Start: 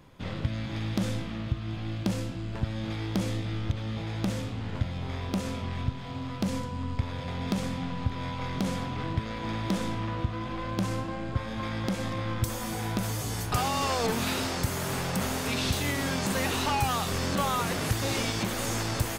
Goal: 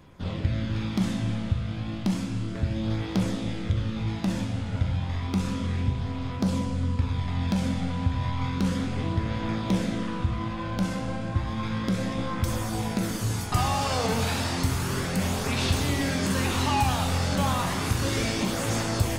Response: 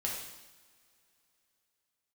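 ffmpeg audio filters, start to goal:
-filter_complex "[0:a]flanger=delay=0:depth=1.5:regen=-46:speed=0.32:shape=triangular,asplit=2[a][b];[1:a]atrim=start_sample=2205,asetrate=22491,aresample=44100,lowshelf=f=220:g=5[c];[b][c]afir=irnorm=-1:irlink=0,volume=-7.5dB[d];[a][d]amix=inputs=2:normalize=0"

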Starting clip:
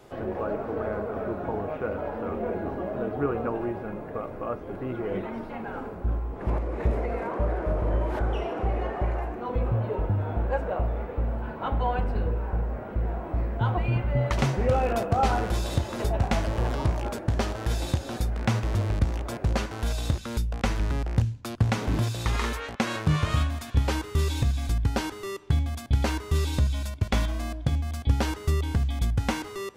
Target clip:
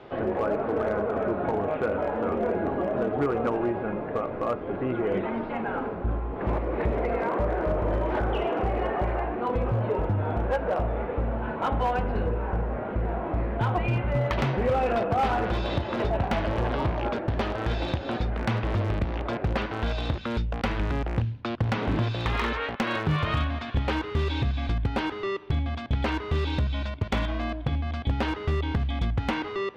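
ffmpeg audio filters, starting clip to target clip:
-af "lowpass=f=3.6k:w=0.5412,lowpass=f=3.6k:w=1.3066,lowshelf=f=100:g=-8.5,acompressor=threshold=-29dB:ratio=2,asoftclip=type=hard:threshold=-25dB,volume=6dB"

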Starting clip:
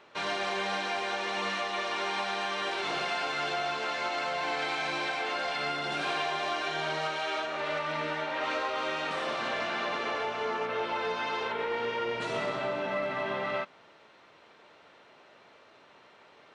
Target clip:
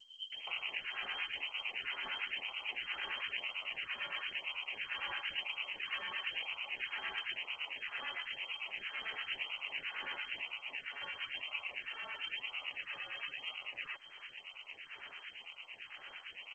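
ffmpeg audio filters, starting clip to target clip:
-filter_complex "[0:a]asplit=3[a][b][c];[a]afade=t=out:st=8.48:d=0.02[d];[b]bandreject=f=620:w=15,afade=t=in:st=8.48:d=0.02,afade=t=out:st=9.35:d=0.02[e];[c]afade=t=in:st=9.35:d=0.02[f];[d][e][f]amix=inputs=3:normalize=0,acrossover=split=150[g][h];[g]aeval=exprs='val(0)*sin(2*PI*150*n/s)':c=same[i];[h]acompressor=threshold=-45dB:ratio=20[j];[i][j]amix=inputs=2:normalize=0,crystalizer=i=9.5:c=0,acrusher=samples=20:mix=1:aa=0.000001:lfo=1:lforange=20:lforate=1,acrossover=split=2100[k][l];[k]aeval=exprs='val(0)*(1-1/2+1/2*cos(2*PI*8.9*n/s))':c=same[m];[l]aeval=exprs='val(0)*(1-1/2-1/2*cos(2*PI*8.9*n/s))':c=same[n];[m][n]amix=inputs=2:normalize=0,acrossover=split=200[o][p];[p]adelay=320[q];[o][q]amix=inputs=2:normalize=0,lowpass=f=2.7k:t=q:w=0.5098,lowpass=f=2.7k:t=q:w=0.6013,lowpass=f=2.7k:t=q:w=0.9,lowpass=f=2.7k:t=q:w=2.563,afreqshift=-3200,volume=4dB" -ar 16000 -c:a g722

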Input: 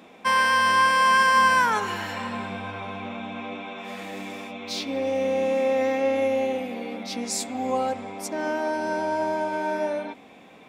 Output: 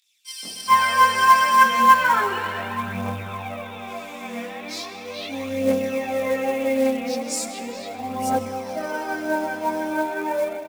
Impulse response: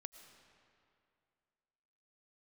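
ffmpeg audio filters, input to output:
-filter_complex "[0:a]aphaser=in_gain=1:out_gain=1:delay=4.3:decay=0.67:speed=0.38:type=triangular,acrossover=split=3800[a][b];[a]adelay=430[c];[c][b]amix=inputs=2:normalize=0,asplit=2[d][e];[1:a]atrim=start_sample=2205,adelay=22[f];[e][f]afir=irnorm=-1:irlink=0,volume=9.5dB[g];[d][g]amix=inputs=2:normalize=0,acrusher=bits=5:mode=log:mix=0:aa=0.000001,volume=-5.5dB"

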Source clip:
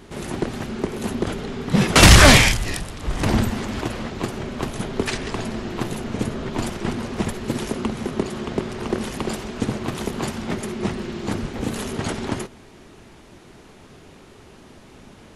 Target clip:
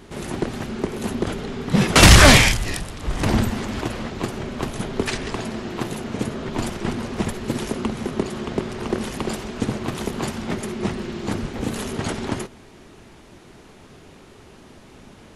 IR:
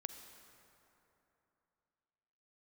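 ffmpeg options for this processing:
-filter_complex "[0:a]asettb=1/sr,asplit=3[a][b][c];[a]atrim=end=5.354[d];[b]atrim=start=5.35:end=6.48,asetpts=PTS-STARTPTS,afade=t=in:d=0.004:c=qsin,afade=t=out:st=1.126:d=0.004:c=qsin,lowshelf=f=62:g=-10[e];[c]atrim=start=6.476[f];[d][e]acrossfade=d=0.004:c1=hsin:c2=qsin[g];[g][f]acrossfade=d=0.004:c1=qsin:c2=hsin"

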